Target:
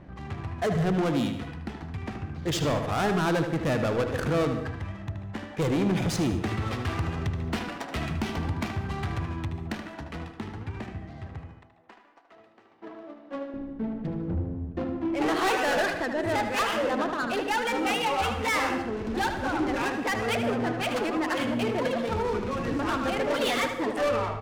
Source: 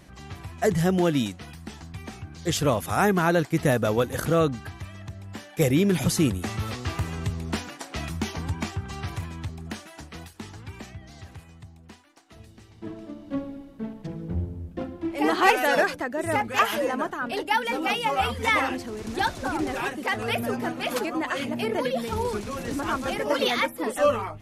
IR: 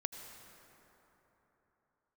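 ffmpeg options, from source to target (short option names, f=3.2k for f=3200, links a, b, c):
-filter_complex "[0:a]asettb=1/sr,asplit=3[a][b][c];[a]atrim=end=11.514[d];[b]atrim=start=11.51:end=13.54,asetpts=PTS-STARTPTS,afade=t=in:d=0.004:c=qsin,afade=t=out:st=2.026:d=0.004:c=qsin,highpass=580[e];[c]atrim=start=13.536[f];[d][e]acrossfade=d=0.004:c1=hsin:c2=qsin[g];[g][f]acrossfade=d=0.004:c1=qsin:c2=hsin,asplit=2[h][i];[i]acompressor=threshold=-31dB:ratio=6,volume=-2dB[j];[h][j]amix=inputs=2:normalize=0,asoftclip=type=tanh:threshold=-21dB,adynamicsmooth=sensitivity=6.5:basefreq=1.2k,asplit=2[k][l];[l]adelay=76,lowpass=f=4.4k:p=1,volume=-7dB,asplit=2[m][n];[n]adelay=76,lowpass=f=4.4k:p=1,volume=0.45,asplit=2[o][p];[p]adelay=76,lowpass=f=4.4k:p=1,volume=0.45,asplit=2[q][r];[r]adelay=76,lowpass=f=4.4k:p=1,volume=0.45,asplit=2[s][t];[t]adelay=76,lowpass=f=4.4k:p=1,volume=0.45[u];[k][m][o][q][s][u]amix=inputs=6:normalize=0,asplit=2[v][w];[1:a]atrim=start_sample=2205,afade=t=out:st=0.27:d=0.01,atrim=end_sample=12348[x];[w][x]afir=irnorm=-1:irlink=0,volume=4.5dB[y];[v][y]amix=inputs=2:normalize=0,volume=-8.5dB"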